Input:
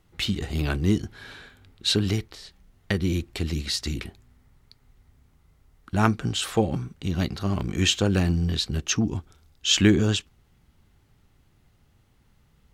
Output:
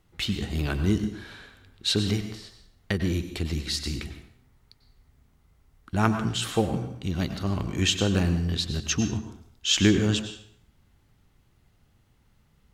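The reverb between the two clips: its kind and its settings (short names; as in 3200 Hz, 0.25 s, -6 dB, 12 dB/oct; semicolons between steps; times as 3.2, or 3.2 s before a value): plate-style reverb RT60 0.64 s, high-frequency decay 0.85×, pre-delay 85 ms, DRR 8.5 dB; gain -2 dB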